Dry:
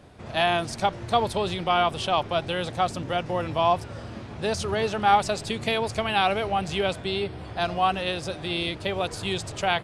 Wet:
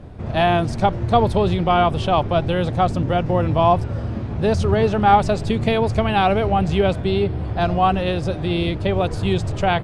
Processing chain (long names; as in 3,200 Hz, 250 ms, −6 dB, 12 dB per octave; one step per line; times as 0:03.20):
spectral tilt −3 dB per octave
level +4.5 dB